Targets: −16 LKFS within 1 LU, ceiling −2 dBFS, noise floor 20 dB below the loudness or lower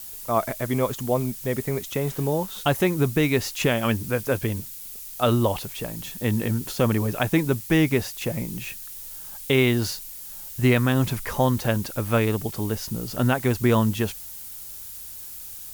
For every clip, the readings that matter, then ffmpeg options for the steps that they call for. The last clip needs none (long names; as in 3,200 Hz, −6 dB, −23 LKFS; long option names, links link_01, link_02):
background noise floor −39 dBFS; target noise floor −44 dBFS; integrated loudness −24.0 LKFS; sample peak −8.0 dBFS; target loudness −16.0 LKFS
→ -af "afftdn=noise_reduction=6:noise_floor=-39"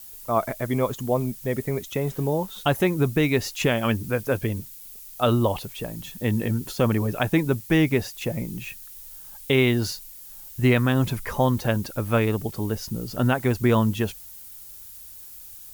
background noise floor −43 dBFS; target noise floor −45 dBFS
→ -af "afftdn=noise_reduction=6:noise_floor=-43"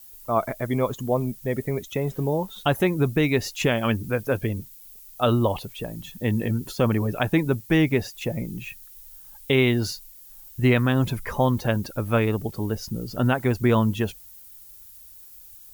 background noise floor −47 dBFS; integrated loudness −24.5 LKFS; sample peak −8.5 dBFS; target loudness −16.0 LKFS
→ -af "volume=8.5dB,alimiter=limit=-2dB:level=0:latency=1"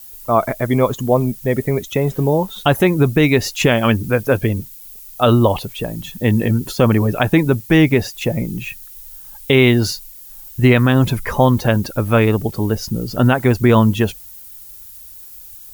integrated loudness −16.5 LKFS; sample peak −2.0 dBFS; background noise floor −38 dBFS